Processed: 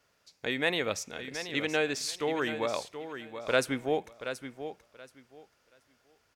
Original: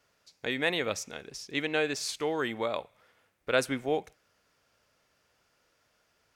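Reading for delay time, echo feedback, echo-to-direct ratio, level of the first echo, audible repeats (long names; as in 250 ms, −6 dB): 728 ms, 20%, −10.0 dB, −10.0 dB, 2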